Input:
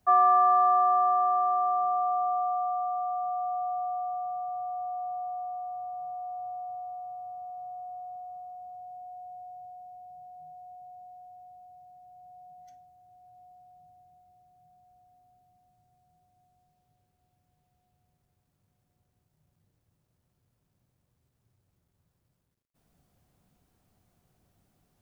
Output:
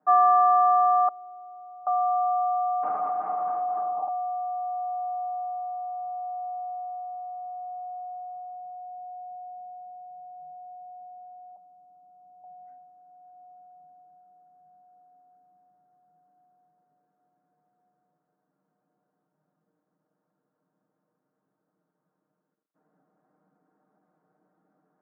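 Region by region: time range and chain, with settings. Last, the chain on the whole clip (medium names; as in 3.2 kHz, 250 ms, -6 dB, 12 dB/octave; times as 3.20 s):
1.08–1.87 s: ladder band-pass 270 Hz, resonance 25% + band-stop 400 Hz, Q 6.5
2.83–4.08 s: hard clipper -28 dBFS + LPC vocoder at 8 kHz whisper
11.56–12.44 s: low-pass 1.3 kHz 24 dB/octave + peaking EQ 700 Hz -7 dB 0.39 oct
whole clip: elliptic band-pass 210–1500 Hz, stop band 40 dB; comb 6.5 ms, depth 91%; trim +2.5 dB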